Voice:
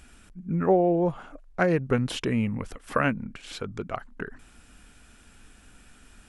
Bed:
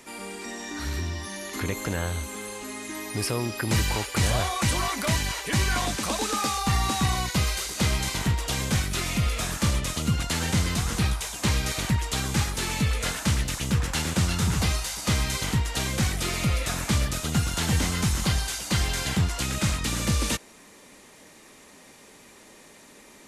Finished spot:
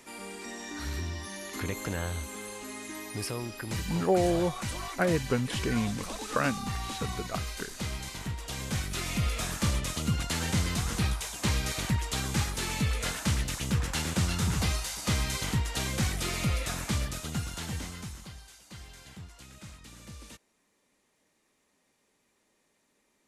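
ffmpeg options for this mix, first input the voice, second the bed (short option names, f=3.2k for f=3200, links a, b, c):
-filter_complex "[0:a]adelay=3400,volume=-4dB[a];[1:a]volume=2.5dB,afade=t=out:st=2.82:d=0.99:silence=0.473151,afade=t=in:st=8.37:d=0.88:silence=0.446684,afade=t=out:st=16.48:d=1.83:silence=0.125893[b];[a][b]amix=inputs=2:normalize=0"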